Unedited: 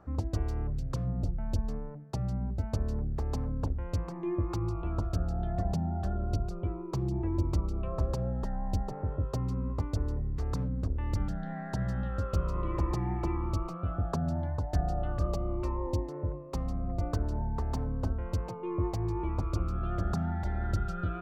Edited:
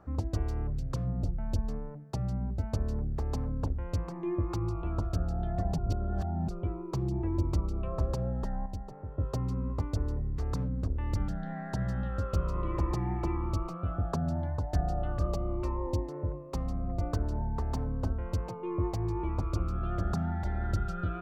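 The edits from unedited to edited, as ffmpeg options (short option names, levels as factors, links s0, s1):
-filter_complex "[0:a]asplit=5[s0][s1][s2][s3][s4];[s0]atrim=end=5.782[s5];[s1]atrim=start=5.778:end=6.482,asetpts=PTS-STARTPTS,areverse[s6];[s2]atrim=start=6.478:end=8.662[s7];[s3]atrim=start=8.658:end=9.182,asetpts=PTS-STARTPTS,volume=0.398[s8];[s4]atrim=start=9.178[s9];[s5][s6]acrossfade=d=0.004:c1=hsin:c2=hsin[s10];[s10][s7]acrossfade=d=0.004:c1=hsin:c2=hsin[s11];[s11][s8]acrossfade=d=0.004:c1=hsin:c2=hsin[s12];[s12][s9]acrossfade=d=0.004:c1=hsin:c2=hsin"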